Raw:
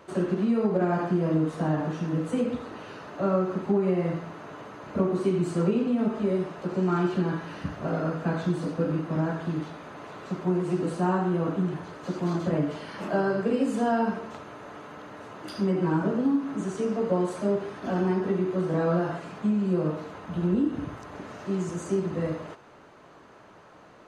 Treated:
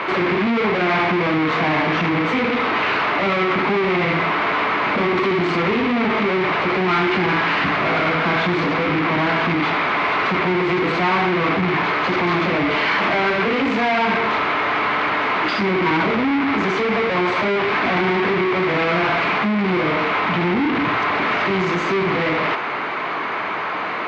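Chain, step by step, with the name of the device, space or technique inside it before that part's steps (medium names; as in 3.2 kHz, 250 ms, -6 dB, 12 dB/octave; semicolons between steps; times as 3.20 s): overdrive pedal into a guitar cabinet (overdrive pedal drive 38 dB, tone 3.8 kHz, clips at -12.5 dBFS; cabinet simulation 93–4300 Hz, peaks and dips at 550 Hz -6 dB, 1.1 kHz +3 dB, 2.2 kHz +10 dB)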